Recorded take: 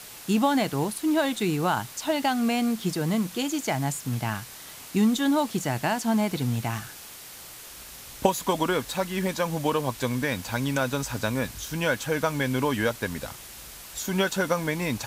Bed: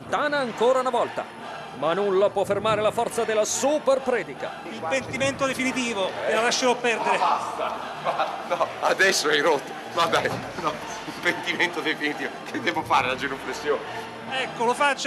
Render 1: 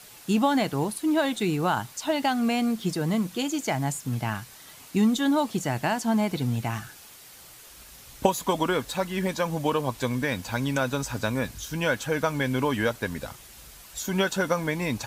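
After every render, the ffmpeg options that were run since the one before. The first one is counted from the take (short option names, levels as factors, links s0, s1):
-af "afftdn=nr=6:nf=-44"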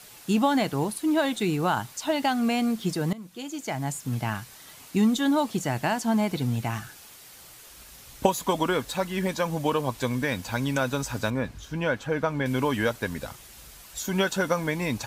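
-filter_complex "[0:a]asettb=1/sr,asplit=3[s0][s1][s2];[s0]atrim=end=11.304[s3];[s1]atrim=start=11.3:end=12.46,asetpts=PTS-STARTPTS,afade=t=in:d=0.004:c=qsin,afade=t=out:st=1.156:d=0.004:c=qsin,lowpass=f=1900:p=1[s4];[s2]atrim=start=12.456[s5];[s3][s4]acrossfade=d=0.004:c1=hsin:c2=qsin[s6];[s6][s5]acrossfade=d=0.004:c1=qsin:c2=hsin,asplit=2[s7][s8];[s7]atrim=end=3.13,asetpts=PTS-STARTPTS,afade=t=out:st=3.126:d=0.004:c=hsin:silence=0.112202[s9];[s8]atrim=start=3.13,asetpts=PTS-STARTPTS,afade=t=in:d=1:silence=0.112202[s10];[s9][s10]concat=n=2:v=0:a=1"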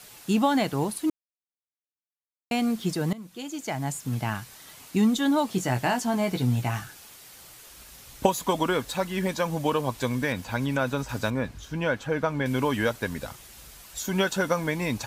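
-filter_complex "[0:a]asettb=1/sr,asplit=3[s0][s1][s2];[s0]atrim=end=5.504[s3];[s1]atrim=start=5.5:end=6.84,asetpts=PTS-STARTPTS,afade=t=in:d=0.004:c=qsin,afade=t=out:st=1.336:d=0.004:c=qsin,asplit=2[s4][s5];[s5]adelay=16,volume=0.501[s6];[s4][s6]amix=inputs=2:normalize=0,atrim=end_sample=59094[s7];[s2]atrim=start=6.836[s8];[s3][s7]acrossfade=d=0.004:c1=hsin:c2=qsin[s9];[s9][s8]acrossfade=d=0.004:c1=qsin:c2=hsin,asettb=1/sr,asplit=3[s10][s11][s12];[s10]atrim=end=10.324[s13];[s11]atrim=start=10.32:end=11.09,asetpts=PTS-STARTPTS,afade=t=in:d=0.004:c=qsin,afade=t=out:st=0.766:d=0.004:c=qsin,acrossover=split=3200[s14][s15];[s15]acompressor=threshold=0.00631:ratio=4:attack=1:release=60[s16];[s14][s16]amix=inputs=2:normalize=0[s17];[s12]atrim=start=11.086[s18];[s13][s17]acrossfade=d=0.004:c1=hsin:c2=qsin[s19];[s19][s18]acrossfade=d=0.004:c1=qsin:c2=hsin,asplit=3[s20][s21][s22];[s20]atrim=end=1.1,asetpts=PTS-STARTPTS,afade=t=out:st=1.096:d=0.004:c=hsin[s23];[s21]atrim=start=1.1:end=2.51,asetpts=PTS-STARTPTS,volume=0[s24];[s22]atrim=start=2.51,asetpts=PTS-STARTPTS,afade=t=in:d=0.004:c=hsin[s25];[s23][s24][s25]concat=n=3:v=0:a=1"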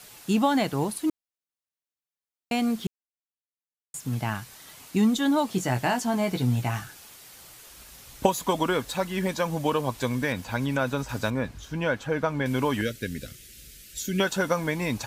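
-filter_complex "[0:a]asettb=1/sr,asplit=3[s0][s1][s2];[s0]atrim=end=12.814[s3];[s1]atrim=start=12.81:end=14.2,asetpts=PTS-STARTPTS,afade=t=in:d=0.004:c=qsin,afade=t=out:st=1.386:d=0.004:c=qsin,asuperstop=centerf=910:order=4:qfactor=0.65[s4];[s2]atrim=start=14.196[s5];[s3][s4]acrossfade=d=0.004:c1=hsin:c2=qsin[s6];[s6][s5]acrossfade=d=0.004:c1=qsin:c2=hsin,asplit=3[s7][s8][s9];[s7]atrim=end=2.87,asetpts=PTS-STARTPTS,afade=t=out:st=2.866:d=0.004:c=hsin[s10];[s8]atrim=start=2.87:end=3.94,asetpts=PTS-STARTPTS,volume=0[s11];[s9]atrim=start=3.94,asetpts=PTS-STARTPTS,afade=t=in:d=0.004:c=hsin[s12];[s10][s11][s12]concat=n=3:v=0:a=1"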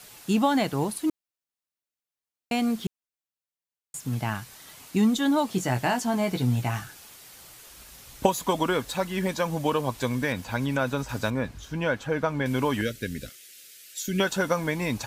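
-filter_complex "[0:a]asettb=1/sr,asplit=3[s0][s1][s2];[s0]atrim=end=13.294[s3];[s1]atrim=start=13.29:end=14.08,asetpts=PTS-STARTPTS,afade=t=in:d=0.004:c=qsin,afade=t=out:st=0.786:d=0.004:c=qsin,highpass=590[s4];[s2]atrim=start=14.076[s5];[s3][s4]acrossfade=d=0.004:c1=hsin:c2=qsin[s6];[s6][s5]acrossfade=d=0.004:c1=qsin:c2=hsin"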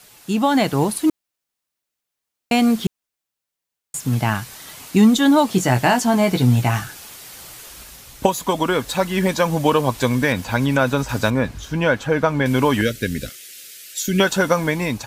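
-af "dynaudnorm=f=190:g=5:m=2.99"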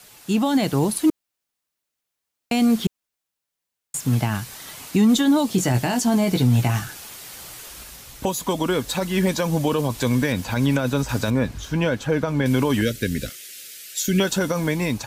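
-filter_complex "[0:a]alimiter=limit=0.335:level=0:latency=1:release=12,acrossover=split=490|3000[s0][s1][s2];[s1]acompressor=threshold=0.0355:ratio=3[s3];[s0][s3][s2]amix=inputs=3:normalize=0"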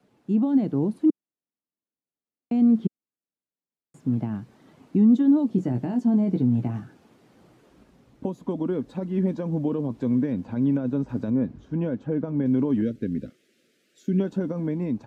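-af "bandpass=f=250:t=q:w=1.5:csg=0"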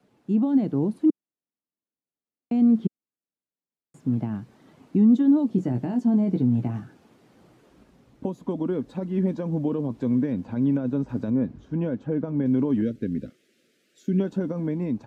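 -af anull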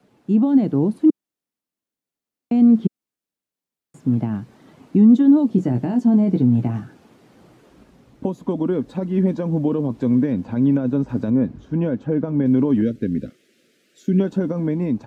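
-af "volume=1.88"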